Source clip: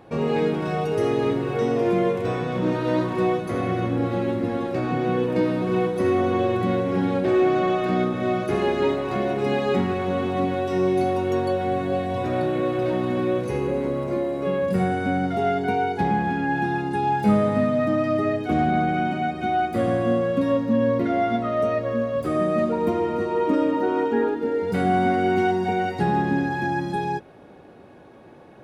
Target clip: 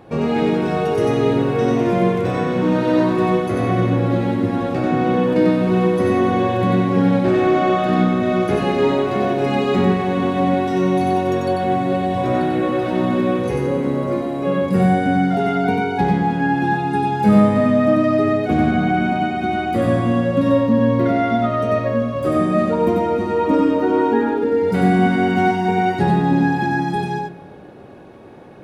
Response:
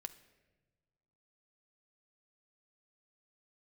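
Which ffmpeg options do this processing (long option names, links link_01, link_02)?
-filter_complex "[0:a]lowshelf=frequency=360:gain=2.5,asplit=2[link_01][link_02];[1:a]atrim=start_sample=2205,adelay=93[link_03];[link_02][link_03]afir=irnorm=-1:irlink=0,volume=1.5dB[link_04];[link_01][link_04]amix=inputs=2:normalize=0,volume=3dB"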